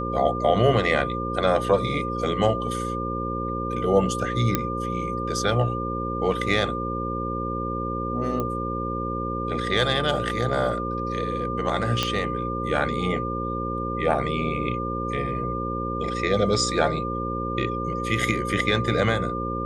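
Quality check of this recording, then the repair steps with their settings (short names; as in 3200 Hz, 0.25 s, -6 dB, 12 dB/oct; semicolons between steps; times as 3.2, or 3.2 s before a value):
buzz 60 Hz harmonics 9 -30 dBFS
tone 1200 Hz -29 dBFS
4.55 pop -6 dBFS
8.4 pop -15 dBFS
12.03 pop -8 dBFS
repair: de-click; de-hum 60 Hz, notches 9; notch 1200 Hz, Q 30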